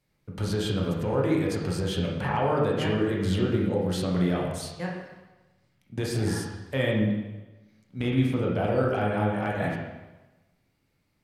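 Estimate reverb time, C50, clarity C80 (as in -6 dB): 1.1 s, 1.5 dB, 4.0 dB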